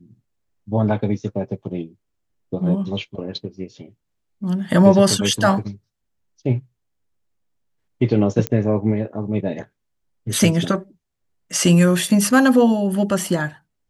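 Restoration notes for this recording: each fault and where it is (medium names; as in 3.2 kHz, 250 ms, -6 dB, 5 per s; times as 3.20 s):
8.47 s: pop -7 dBFS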